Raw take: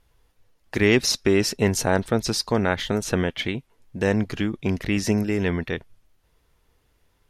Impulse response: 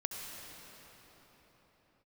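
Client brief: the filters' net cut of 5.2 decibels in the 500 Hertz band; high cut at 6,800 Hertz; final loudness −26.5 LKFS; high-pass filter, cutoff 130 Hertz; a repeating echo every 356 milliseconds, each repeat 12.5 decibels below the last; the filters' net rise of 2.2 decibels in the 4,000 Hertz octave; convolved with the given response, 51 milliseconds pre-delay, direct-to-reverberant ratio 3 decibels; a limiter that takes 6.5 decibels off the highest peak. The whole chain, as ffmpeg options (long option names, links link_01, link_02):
-filter_complex "[0:a]highpass=130,lowpass=6800,equalizer=frequency=500:width_type=o:gain=-7,equalizer=frequency=4000:width_type=o:gain=4,alimiter=limit=-12dB:level=0:latency=1,aecho=1:1:356|712|1068:0.237|0.0569|0.0137,asplit=2[link_01][link_02];[1:a]atrim=start_sample=2205,adelay=51[link_03];[link_02][link_03]afir=irnorm=-1:irlink=0,volume=-4.5dB[link_04];[link_01][link_04]amix=inputs=2:normalize=0,volume=-2dB"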